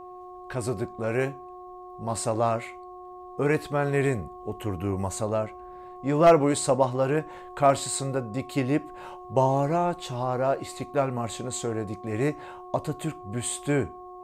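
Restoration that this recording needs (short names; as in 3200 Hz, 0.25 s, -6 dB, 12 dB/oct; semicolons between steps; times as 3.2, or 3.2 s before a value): clip repair -9.5 dBFS; de-hum 363 Hz, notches 3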